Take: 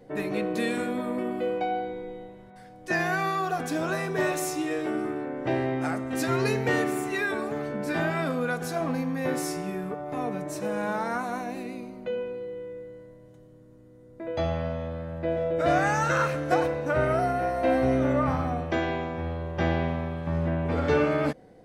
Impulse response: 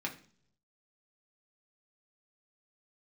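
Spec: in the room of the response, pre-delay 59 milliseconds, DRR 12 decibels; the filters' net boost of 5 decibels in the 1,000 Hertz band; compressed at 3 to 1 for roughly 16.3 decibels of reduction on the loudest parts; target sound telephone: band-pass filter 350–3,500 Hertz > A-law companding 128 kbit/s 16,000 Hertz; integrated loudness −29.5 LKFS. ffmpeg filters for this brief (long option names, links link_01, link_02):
-filter_complex "[0:a]equalizer=frequency=1000:width_type=o:gain=7.5,acompressor=threshold=-39dB:ratio=3,asplit=2[link_01][link_02];[1:a]atrim=start_sample=2205,adelay=59[link_03];[link_02][link_03]afir=irnorm=-1:irlink=0,volume=-15dB[link_04];[link_01][link_04]amix=inputs=2:normalize=0,highpass=350,lowpass=3500,volume=10dB" -ar 16000 -c:a pcm_alaw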